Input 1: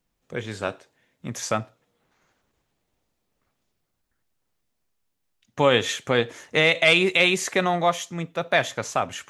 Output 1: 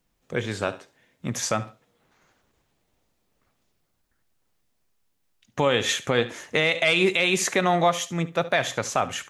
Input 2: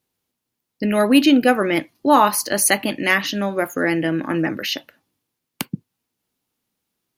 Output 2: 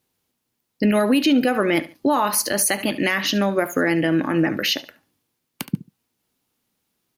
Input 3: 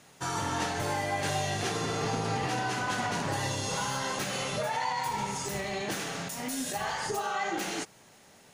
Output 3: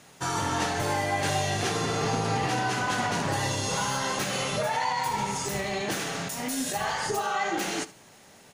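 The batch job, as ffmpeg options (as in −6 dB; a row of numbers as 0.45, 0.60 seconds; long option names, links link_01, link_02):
-af "aecho=1:1:71|142:0.126|0.0277,alimiter=limit=-13dB:level=0:latency=1:release=133,volume=3.5dB"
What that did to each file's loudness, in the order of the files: −1.5, −2.0, +3.5 LU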